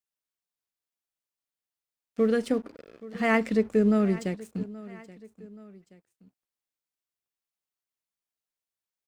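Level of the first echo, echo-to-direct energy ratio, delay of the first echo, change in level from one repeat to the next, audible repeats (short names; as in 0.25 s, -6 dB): -19.0 dB, -18.0 dB, 0.827 s, -6.0 dB, 2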